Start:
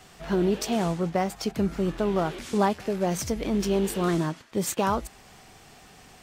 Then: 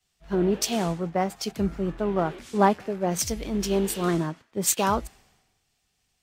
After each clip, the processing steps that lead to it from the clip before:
multiband upward and downward expander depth 100%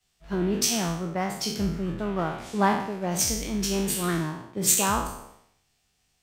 peak hold with a decay on every bin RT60 0.67 s
dynamic equaliser 520 Hz, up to −7 dB, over −36 dBFS, Q 0.83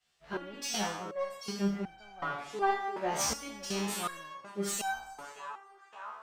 mid-hump overdrive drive 16 dB, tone 2,800 Hz, clips at −6.5 dBFS
feedback echo with a band-pass in the loop 568 ms, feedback 71%, band-pass 1,200 Hz, level −12 dB
step-sequenced resonator 2.7 Hz 73–770 Hz

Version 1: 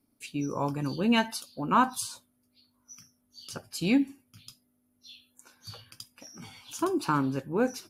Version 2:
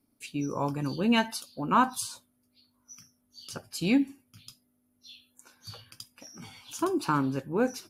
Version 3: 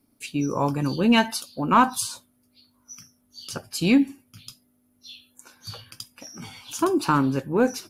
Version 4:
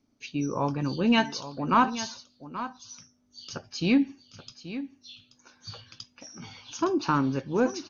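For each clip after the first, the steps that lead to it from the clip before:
no processing that can be heard
soft clipping −12 dBFS, distortion −25 dB; level +6.5 dB
single-tap delay 830 ms −13 dB; level −4 dB; MP2 64 kbit/s 24,000 Hz

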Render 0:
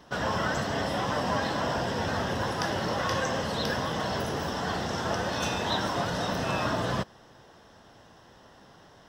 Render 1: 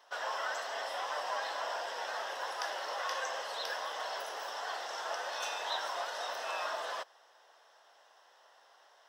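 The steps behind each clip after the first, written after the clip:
high-pass filter 580 Hz 24 dB per octave
level −6 dB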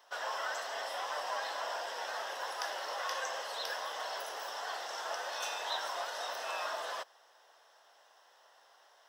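high-shelf EQ 8,400 Hz +6.5 dB
level −1 dB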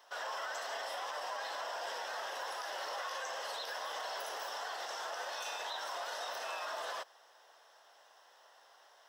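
brickwall limiter −32.5 dBFS, peak gain reduction 11 dB
level +1 dB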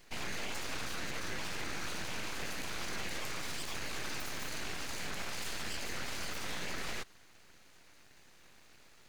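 full-wave rectification
level +4 dB

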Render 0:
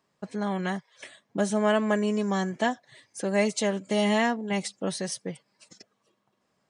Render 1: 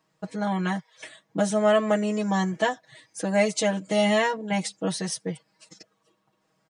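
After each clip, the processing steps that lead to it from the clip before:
comb filter 6.3 ms, depth 91%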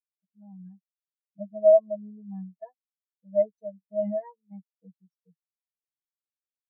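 every bin expanded away from the loudest bin 4 to 1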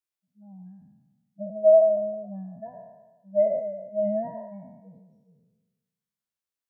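peak hold with a decay on every bin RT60 1.20 s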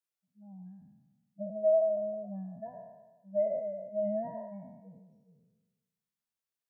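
downward compressor 1.5 to 1, threshold −31 dBFS, peak gain reduction 7 dB
level −3 dB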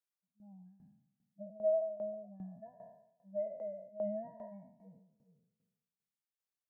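shaped tremolo saw down 2.5 Hz, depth 80%
level −3.5 dB

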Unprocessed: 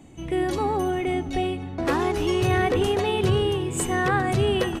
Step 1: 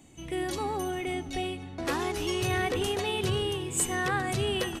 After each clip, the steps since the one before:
high-shelf EQ 2,400 Hz +10.5 dB
level −8 dB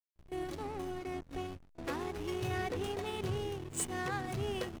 slack as between gear wheels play −27.5 dBFS
backwards echo 33 ms −22 dB
level −6.5 dB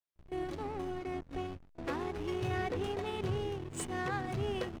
low-pass filter 3,500 Hz 6 dB per octave
level +1.5 dB

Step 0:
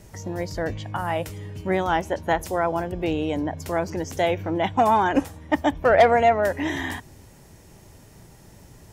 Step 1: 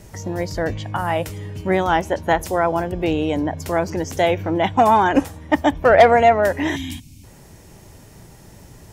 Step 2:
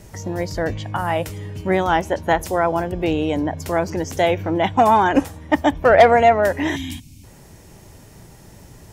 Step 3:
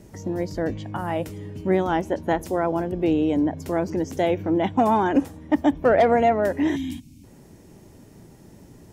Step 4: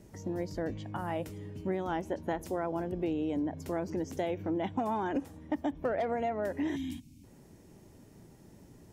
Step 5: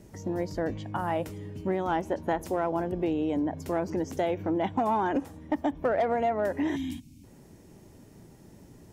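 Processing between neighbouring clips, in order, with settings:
gain on a spectral selection 0:06.76–0:07.24, 310–2,100 Hz −21 dB; level +4.5 dB
no processing that can be heard
parametric band 270 Hz +11 dB 1.8 octaves; boost into a limiter −1 dB; level −8 dB
downward compressor, threshold −21 dBFS, peak gain reduction 7.5 dB; level −7.5 dB
dynamic equaliser 970 Hz, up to +4 dB, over −45 dBFS, Q 0.81; in parallel at −6.5 dB: gain into a clipping stage and back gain 24 dB

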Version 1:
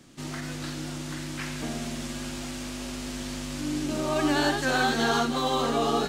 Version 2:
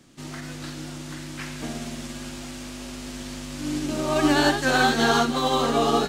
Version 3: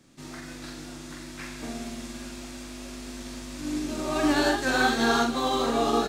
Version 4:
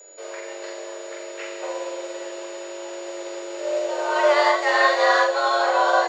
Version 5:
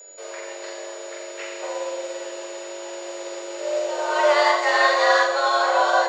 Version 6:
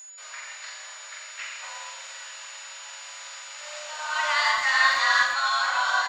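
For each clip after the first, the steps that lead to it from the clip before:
expander for the loud parts 1.5 to 1, over −35 dBFS; level +5.5 dB
notch filter 3,000 Hz, Q 15; double-tracking delay 43 ms −5 dB; level −4.5 dB
high-frequency loss of the air 160 metres; frequency shifter +300 Hz; steady tone 6,900 Hz −51 dBFS; level +6 dB
bass and treble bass −12 dB, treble +3 dB; on a send at −9 dB: convolution reverb RT60 0.30 s, pre-delay 86 ms
high-pass filter 1,100 Hz 24 dB per octave; far-end echo of a speakerphone 110 ms, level −9 dB

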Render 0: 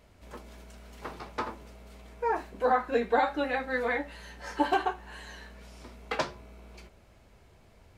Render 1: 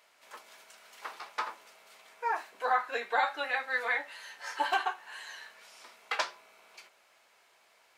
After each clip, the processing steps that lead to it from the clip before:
high-pass filter 990 Hz 12 dB per octave
level +2.5 dB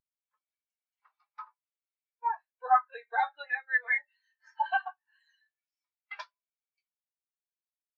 high-shelf EQ 2,000 Hz +10 dB
every bin expanded away from the loudest bin 2.5 to 1
level −2.5 dB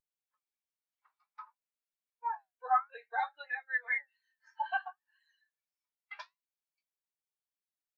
flanger 0.57 Hz, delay 1.7 ms, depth 9.2 ms, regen +69%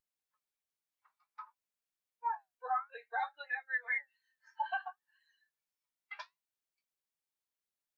brickwall limiter −25.5 dBFS, peak gain reduction 8 dB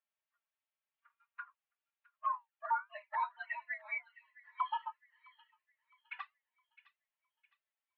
flanger swept by the level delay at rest 4.2 ms, full sweep at −36.5 dBFS
delay with a high-pass on its return 661 ms, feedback 37%, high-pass 2,100 Hz, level −14.5 dB
single-sideband voice off tune +150 Hz 410–3,100 Hz
level +4.5 dB

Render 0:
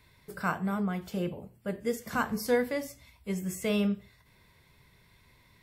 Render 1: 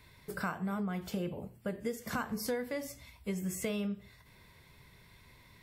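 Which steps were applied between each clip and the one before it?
downward compressor 6 to 1, threshold −35 dBFS, peak gain reduction 13.5 dB
level +2.5 dB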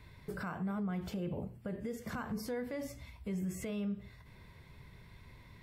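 low-shelf EQ 210 Hz +6 dB
brickwall limiter −31.5 dBFS, peak gain reduction 9.5 dB
high-shelf EQ 4,400 Hz −9 dB
level +1 dB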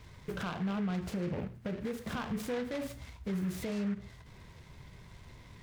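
short delay modulated by noise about 1,500 Hz, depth 0.063 ms
level +3 dB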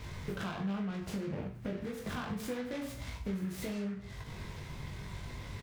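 downward compressor 5 to 1, threshold −45 dBFS, peak gain reduction 13 dB
reverse bouncing-ball delay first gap 20 ms, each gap 1.1×, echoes 5
level +7 dB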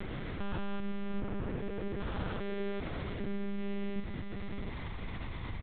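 spectrum averaged block by block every 400 ms
slap from a distant wall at 120 metres, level −6 dB
one-pitch LPC vocoder at 8 kHz 200 Hz
level +4.5 dB

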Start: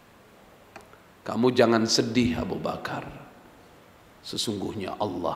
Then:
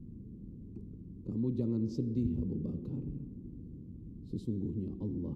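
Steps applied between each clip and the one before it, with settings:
inverse Chebyshev low-pass filter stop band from 620 Hz, stop band 50 dB
every bin compressed towards the loudest bin 2 to 1
level −4 dB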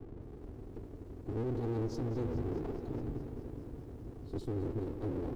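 lower of the sound and its delayed copy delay 2.6 ms
brickwall limiter −31 dBFS, peak gain reduction 8 dB
feedback echo at a low word length 210 ms, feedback 80%, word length 11 bits, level −14.5 dB
level +3 dB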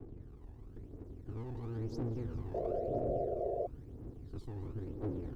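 phase shifter 0.99 Hz, delay 1.2 ms, feedback 57%
sound drawn into the spectrogram noise, 0:02.54–0:03.67, 350–720 Hz −28 dBFS
level −8 dB

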